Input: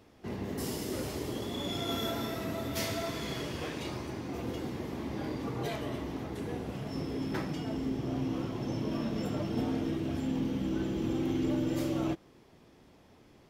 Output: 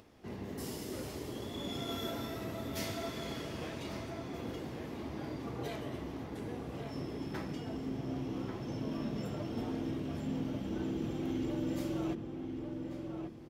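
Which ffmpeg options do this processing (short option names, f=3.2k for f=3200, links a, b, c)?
-filter_complex "[0:a]acompressor=mode=upward:threshold=-49dB:ratio=2.5,asplit=2[a][b];[b]adelay=1140,lowpass=f=1.8k:p=1,volume=-5dB,asplit=2[c][d];[d]adelay=1140,lowpass=f=1.8k:p=1,volume=0.38,asplit=2[e][f];[f]adelay=1140,lowpass=f=1.8k:p=1,volume=0.38,asplit=2[g][h];[h]adelay=1140,lowpass=f=1.8k:p=1,volume=0.38,asplit=2[i][j];[j]adelay=1140,lowpass=f=1.8k:p=1,volume=0.38[k];[a][c][e][g][i][k]amix=inputs=6:normalize=0,volume=-5.5dB"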